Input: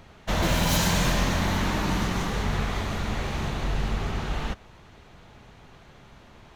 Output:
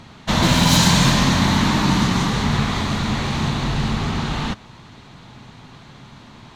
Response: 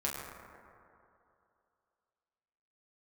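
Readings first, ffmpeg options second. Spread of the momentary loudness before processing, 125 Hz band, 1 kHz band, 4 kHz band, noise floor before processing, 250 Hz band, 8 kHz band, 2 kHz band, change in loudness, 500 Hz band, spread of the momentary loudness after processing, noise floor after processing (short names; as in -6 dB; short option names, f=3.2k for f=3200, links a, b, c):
8 LU, +8.5 dB, +8.0 dB, +10.5 dB, -52 dBFS, +10.5 dB, +8.5 dB, +7.0 dB, +8.5 dB, +4.0 dB, 10 LU, -44 dBFS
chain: -af "equalizer=f=125:t=o:w=1:g=11,equalizer=f=250:t=o:w=1:g=11,equalizer=f=1k:t=o:w=1:g=9,equalizer=f=2k:t=o:w=1:g=4,equalizer=f=4k:t=o:w=1:g=11,equalizer=f=8k:t=o:w=1:g=8,volume=-1.5dB"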